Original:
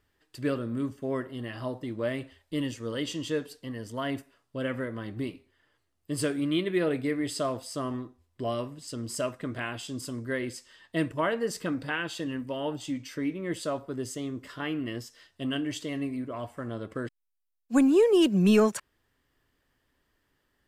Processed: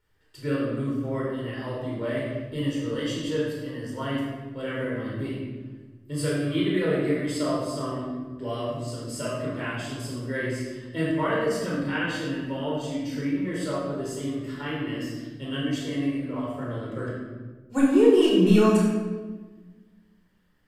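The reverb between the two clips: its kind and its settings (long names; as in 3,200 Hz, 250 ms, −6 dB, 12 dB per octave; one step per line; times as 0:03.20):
rectangular room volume 1,000 cubic metres, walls mixed, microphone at 4.5 metres
level −6.5 dB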